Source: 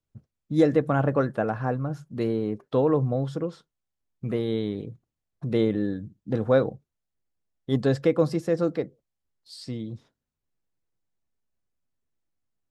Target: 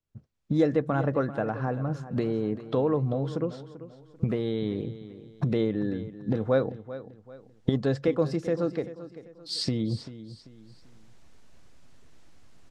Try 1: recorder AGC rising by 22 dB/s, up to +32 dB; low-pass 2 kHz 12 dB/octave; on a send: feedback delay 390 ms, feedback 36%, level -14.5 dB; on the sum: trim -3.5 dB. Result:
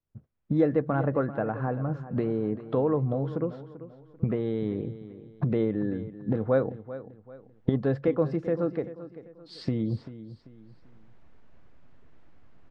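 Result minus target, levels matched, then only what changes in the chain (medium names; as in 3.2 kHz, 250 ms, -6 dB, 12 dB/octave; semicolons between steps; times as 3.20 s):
8 kHz band -19.5 dB
change: low-pass 7 kHz 12 dB/octave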